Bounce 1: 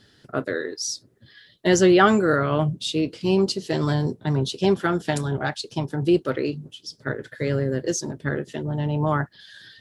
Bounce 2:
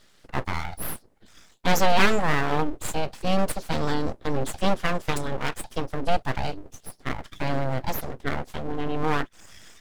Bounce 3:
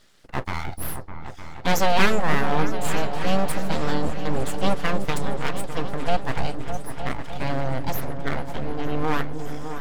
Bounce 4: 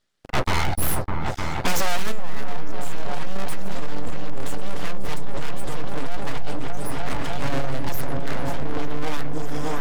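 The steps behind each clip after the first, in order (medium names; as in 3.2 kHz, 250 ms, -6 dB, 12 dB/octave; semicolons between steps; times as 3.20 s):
full-wave rectifier
delay with an opening low-pass 303 ms, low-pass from 400 Hz, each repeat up 2 oct, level -6 dB
waveshaping leveller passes 5; trim -7.5 dB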